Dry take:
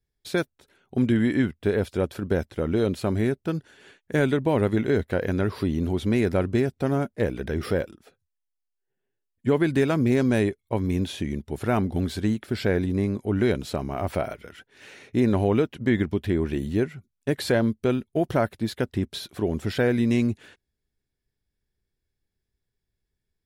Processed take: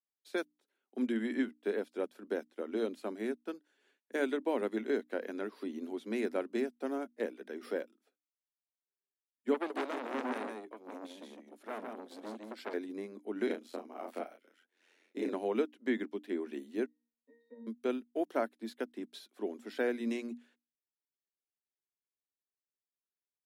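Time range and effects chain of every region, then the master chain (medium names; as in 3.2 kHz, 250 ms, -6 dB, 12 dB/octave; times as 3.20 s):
9.54–12.74 s: delay 157 ms -4 dB + transformer saturation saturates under 1.7 kHz
13.46–15.32 s: doubling 34 ms -3 dB + ring modulator 44 Hz
16.86–17.67 s: peaking EQ 280 Hz +4 dB 2.8 oct + transient shaper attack +6 dB, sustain -5 dB + pitch-class resonator A#, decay 0.79 s
whole clip: steep high-pass 220 Hz 72 dB/octave; hum notches 60/120/180/240/300 Hz; upward expansion 1.5:1, over -45 dBFS; trim -7.5 dB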